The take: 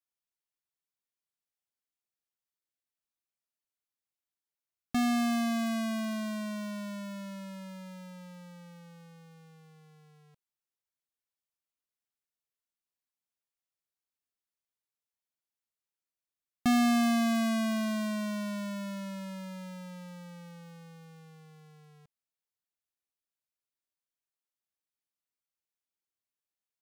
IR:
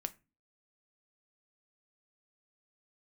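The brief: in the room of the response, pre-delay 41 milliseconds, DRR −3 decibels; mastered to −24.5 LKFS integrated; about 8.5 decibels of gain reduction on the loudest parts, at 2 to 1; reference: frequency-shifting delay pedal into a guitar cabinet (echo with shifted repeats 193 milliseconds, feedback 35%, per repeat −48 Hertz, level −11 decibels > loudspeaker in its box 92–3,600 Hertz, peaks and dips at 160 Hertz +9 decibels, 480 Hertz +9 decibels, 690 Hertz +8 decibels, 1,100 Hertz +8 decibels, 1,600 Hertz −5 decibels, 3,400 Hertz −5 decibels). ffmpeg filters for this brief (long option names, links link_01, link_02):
-filter_complex "[0:a]acompressor=threshold=-41dB:ratio=2,asplit=2[link_01][link_02];[1:a]atrim=start_sample=2205,adelay=41[link_03];[link_02][link_03]afir=irnorm=-1:irlink=0,volume=4dB[link_04];[link_01][link_04]amix=inputs=2:normalize=0,asplit=5[link_05][link_06][link_07][link_08][link_09];[link_06]adelay=193,afreqshift=-48,volume=-11dB[link_10];[link_07]adelay=386,afreqshift=-96,volume=-20.1dB[link_11];[link_08]adelay=579,afreqshift=-144,volume=-29.2dB[link_12];[link_09]adelay=772,afreqshift=-192,volume=-38.4dB[link_13];[link_05][link_10][link_11][link_12][link_13]amix=inputs=5:normalize=0,highpass=92,equalizer=frequency=160:width_type=q:width=4:gain=9,equalizer=frequency=480:width_type=q:width=4:gain=9,equalizer=frequency=690:width_type=q:width=4:gain=8,equalizer=frequency=1100:width_type=q:width=4:gain=8,equalizer=frequency=1600:width_type=q:width=4:gain=-5,equalizer=frequency=3400:width_type=q:width=4:gain=-5,lowpass=frequency=3600:width=0.5412,lowpass=frequency=3600:width=1.3066,volume=6.5dB"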